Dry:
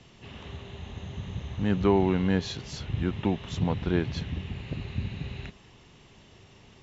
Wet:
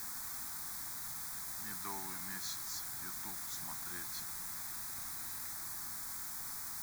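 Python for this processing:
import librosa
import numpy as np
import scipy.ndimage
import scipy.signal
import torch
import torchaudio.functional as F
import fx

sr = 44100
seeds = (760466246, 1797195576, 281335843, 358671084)

p1 = np.diff(x, prepend=0.0)
p2 = fx.quant_dither(p1, sr, seeds[0], bits=6, dither='triangular')
p3 = p1 + F.gain(torch.from_numpy(p2), -7.0).numpy()
p4 = fx.fixed_phaser(p3, sr, hz=1200.0, stages=4)
y = F.gain(torch.from_numpy(p4), 1.0).numpy()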